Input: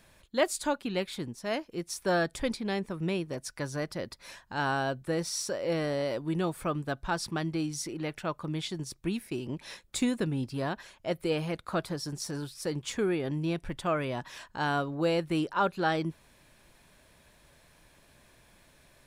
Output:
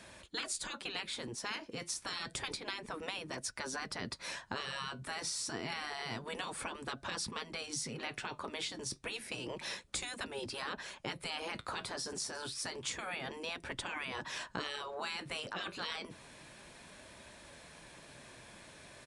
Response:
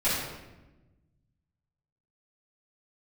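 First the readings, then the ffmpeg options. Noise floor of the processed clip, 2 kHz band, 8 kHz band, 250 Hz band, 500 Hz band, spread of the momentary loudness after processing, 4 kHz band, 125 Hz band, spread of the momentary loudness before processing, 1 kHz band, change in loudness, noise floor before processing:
-57 dBFS, -4.0 dB, -1.0 dB, -15.5 dB, -13.5 dB, 15 LU, 0.0 dB, -15.5 dB, 8 LU, -8.5 dB, -7.5 dB, -62 dBFS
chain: -filter_complex "[0:a]afftfilt=real='re*lt(hypot(re,im),0.0631)':imag='im*lt(hypot(re,im),0.0631)':win_size=1024:overlap=0.75,aresample=22050,aresample=44100,acrossover=split=350[a][b];[b]acompressor=threshold=-46dB:ratio=3[c];[a][c]amix=inputs=2:normalize=0,highpass=f=130:p=1,flanger=delay=3.2:depth=6.7:regen=-67:speed=0.29:shape=sinusoidal,volume=11.5dB"

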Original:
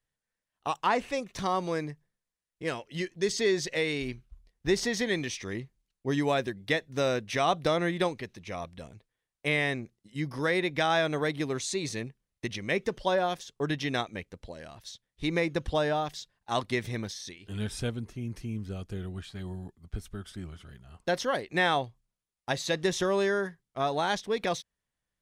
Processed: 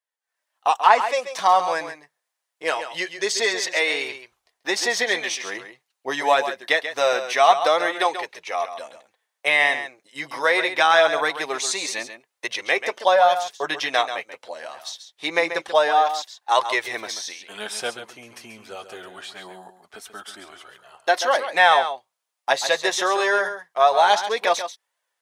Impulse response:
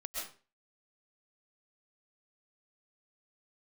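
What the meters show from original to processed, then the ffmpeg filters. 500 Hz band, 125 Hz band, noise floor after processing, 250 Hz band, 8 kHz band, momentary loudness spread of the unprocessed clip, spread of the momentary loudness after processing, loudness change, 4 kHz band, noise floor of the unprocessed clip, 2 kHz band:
+7.0 dB, under -15 dB, -81 dBFS, -5.0 dB, +9.5 dB, 15 LU, 20 LU, +9.5 dB, +9.5 dB, under -85 dBFS, +11.0 dB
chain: -filter_complex "[0:a]flanger=delay=1.8:depth=6.6:regen=-31:speed=0.24:shape=triangular,dynaudnorm=f=210:g=3:m=15dB,highpass=f=740:t=q:w=1.6,asplit=2[a][b];[1:a]atrim=start_sample=2205,atrim=end_sample=3969,adelay=136[c];[b][c]afir=irnorm=-1:irlink=0,volume=-5.5dB[d];[a][d]amix=inputs=2:normalize=0,volume=-1.5dB"

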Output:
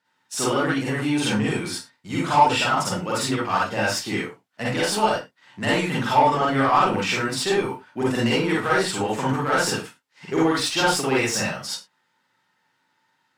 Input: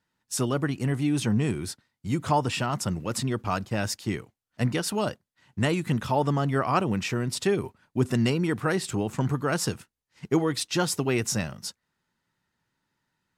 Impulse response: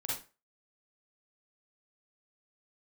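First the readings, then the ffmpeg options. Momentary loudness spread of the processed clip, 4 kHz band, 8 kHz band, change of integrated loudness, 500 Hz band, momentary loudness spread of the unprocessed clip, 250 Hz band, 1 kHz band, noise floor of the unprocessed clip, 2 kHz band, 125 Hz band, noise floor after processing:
11 LU, +8.0 dB, +4.5 dB, +5.0 dB, +5.0 dB, 8 LU, +2.5 dB, +9.5 dB, -83 dBFS, +9.0 dB, -2.0 dB, -70 dBFS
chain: -filter_complex "[0:a]highpass=120,asplit=2[a][b];[b]highpass=f=720:p=1,volume=17dB,asoftclip=type=tanh:threshold=-9dB[c];[a][c]amix=inputs=2:normalize=0,lowpass=f=3.8k:p=1,volume=-6dB[d];[1:a]atrim=start_sample=2205,afade=t=out:st=0.22:d=0.01,atrim=end_sample=10143[e];[d][e]afir=irnorm=-1:irlink=0,volume=-1.5dB"

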